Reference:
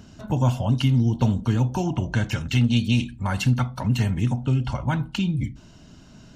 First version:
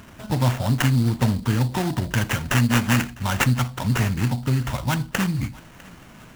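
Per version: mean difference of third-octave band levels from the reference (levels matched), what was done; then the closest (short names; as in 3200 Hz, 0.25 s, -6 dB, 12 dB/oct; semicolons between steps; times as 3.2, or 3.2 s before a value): 7.5 dB: high shelf 2100 Hz +11 dB; sample-rate reducer 4500 Hz, jitter 20%; thinning echo 0.652 s, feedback 52%, level -22 dB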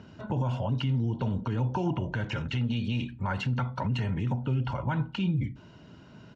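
4.0 dB: comb 2.1 ms, depth 31%; limiter -19.5 dBFS, peak gain reduction 10.5 dB; BPF 110–2800 Hz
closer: second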